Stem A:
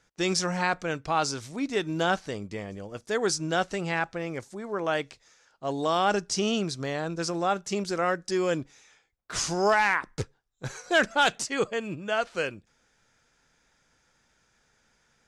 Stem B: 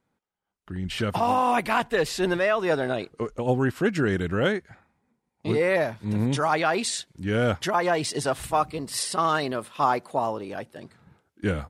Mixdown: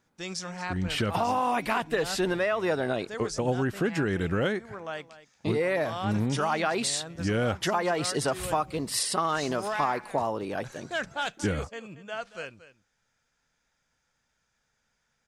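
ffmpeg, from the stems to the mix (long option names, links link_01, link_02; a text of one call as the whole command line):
ffmpeg -i stem1.wav -i stem2.wav -filter_complex "[0:a]equalizer=frequency=350:width_type=o:width=0.77:gain=-5.5,volume=-8dB,asplit=2[link_01][link_02];[link_02]volume=-15.5dB[link_03];[1:a]volume=2dB[link_04];[link_03]aecho=0:1:229:1[link_05];[link_01][link_04][link_05]amix=inputs=3:normalize=0,acompressor=threshold=-24dB:ratio=4" out.wav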